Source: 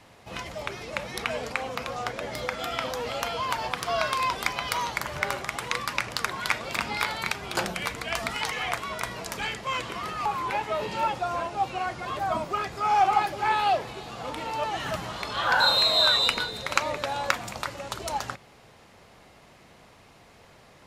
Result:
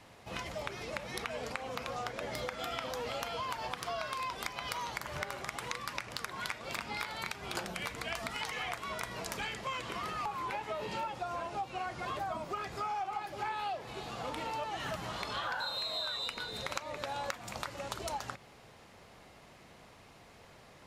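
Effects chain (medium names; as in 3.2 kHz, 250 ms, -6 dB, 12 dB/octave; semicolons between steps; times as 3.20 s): compression 10:1, threshold -31 dBFS, peak gain reduction 15.5 dB; trim -3 dB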